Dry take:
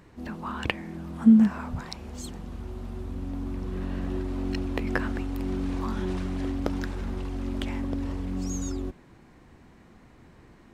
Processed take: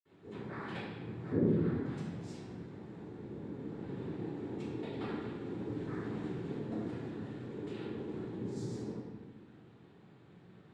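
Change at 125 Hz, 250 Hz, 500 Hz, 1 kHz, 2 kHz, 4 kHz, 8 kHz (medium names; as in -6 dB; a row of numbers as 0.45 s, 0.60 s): -7.0 dB, -12.0 dB, -3.0 dB, -10.5 dB, -13.0 dB, -14.0 dB, under -15 dB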